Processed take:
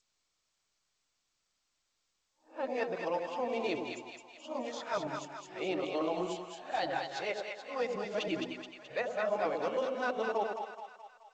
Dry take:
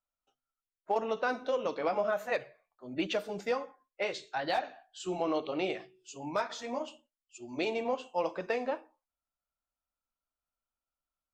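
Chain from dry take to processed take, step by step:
played backwards from end to start
echo with a time of its own for lows and highs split 740 Hz, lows 91 ms, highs 214 ms, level −4 dB
level −3 dB
G.722 64 kbit/s 16,000 Hz

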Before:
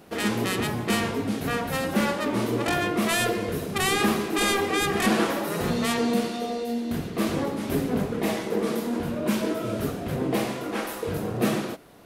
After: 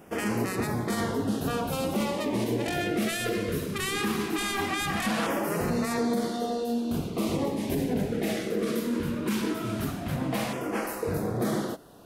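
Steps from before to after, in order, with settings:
auto-filter notch saw down 0.19 Hz 360–4,200 Hz
brickwall limiter −18.5 dBFS, peak gain reduction 8 dB

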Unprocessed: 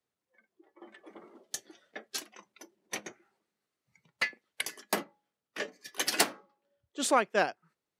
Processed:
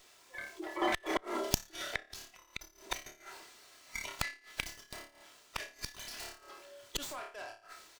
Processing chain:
high-pass filter 490 Hz 12 dB per octave
parametric band 7,900 Hz +9 dB 2.4 octaves
comb filter 3 ms, depth 54%
in parallel at +2 dB: downward compressor 16 to 1, threshold −34 dBFS, peak gain reduction 21.5 dB
on the sum: flutter between parallel walls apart 4.8 metres, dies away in 0.3 s
soft clipping −17 dBFS, distortion −10 dB
gate with flip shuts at −32 dBFS, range −36 dB
transient designer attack −3 dB, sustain +5 dB
windowed peak hold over 3 samples
level +16 dB

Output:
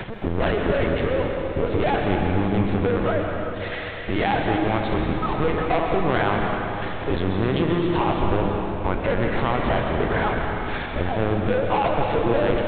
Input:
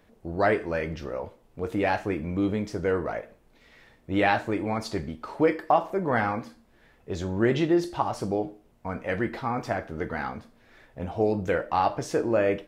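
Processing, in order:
0:02.90–0:04.22: low-shelf EQ 460 Hz −10.5 dB
upward compression, threshold −36 dBFS
leveller curve on the samples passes 5
downward compressor 4 to 1, threshold −23 dBFS, peak gain reduction 10.5 dB
linear-prediction vocoder at 8 kHz pitch kept
convolution reverb RT60 3.6 s, pre-delay 119 ms, DRR 1 dB

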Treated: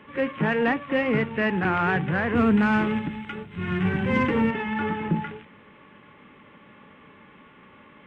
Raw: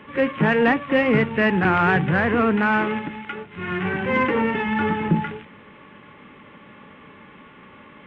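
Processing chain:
0:02.35–0:04.51: bass and treble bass +11 dB, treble +11 dB
level −5 dB

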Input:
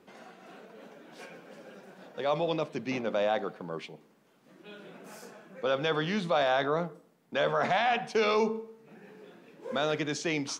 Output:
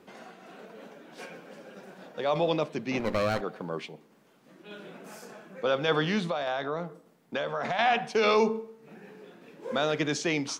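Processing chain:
0:02.99–0:03.41: lower of the sound and its delayed copy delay 0.44 ms
shaped tremolo saw down 1.7 Hz, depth 30%
0:06.27–0:07.79: downward compressor 6 to 1, threshold −32 dBFS, peak gain reduction 8.5 dB
level +4 dB

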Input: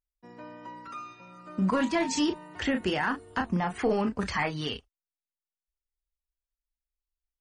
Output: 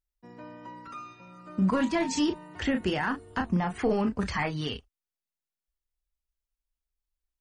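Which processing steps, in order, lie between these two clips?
low-shelf EQ 220 Hz +6 dB
level −1.5 dB

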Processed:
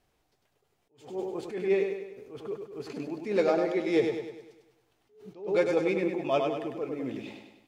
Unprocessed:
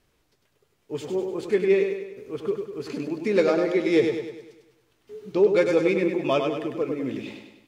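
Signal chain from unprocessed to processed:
parametric band 750 Hz +9 dB 0.43 octaves
level that may rise only so fast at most 140 dB per second
level −5.5 dB

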